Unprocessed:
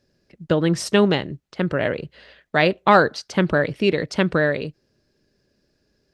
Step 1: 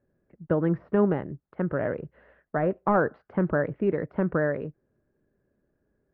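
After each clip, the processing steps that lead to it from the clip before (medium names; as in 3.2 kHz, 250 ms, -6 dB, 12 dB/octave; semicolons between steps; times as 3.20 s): de-esser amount 80%; low-pass 1.6 kHz 24 dB/octave; trim -5 dB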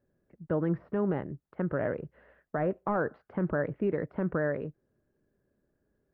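peak limiter -18 dBFS, peak gain reduction 6 dB; trim -2.5 dB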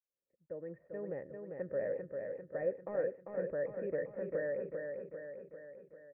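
fade-in on the opening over 1.24 s; cascade formant filter e; on a send: feedback delay 396 ms, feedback 56%, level -5 dB; on the sum: trim +1.5 dB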